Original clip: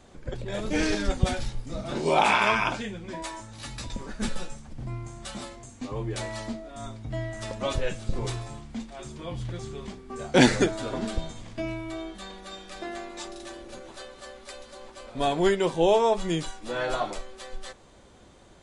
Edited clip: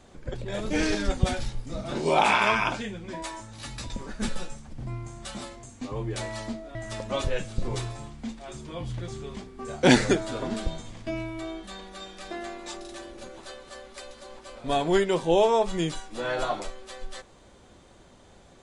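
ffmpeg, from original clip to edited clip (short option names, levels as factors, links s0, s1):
-filter_complex "[0:a]asplit=2[s0][s1];[s0]atrim=end=6.752[s2];[s1]atrim=start=7.258[s3];[s2][s3]acrossfade=d=0.004:c1=hsin:c2=hsin"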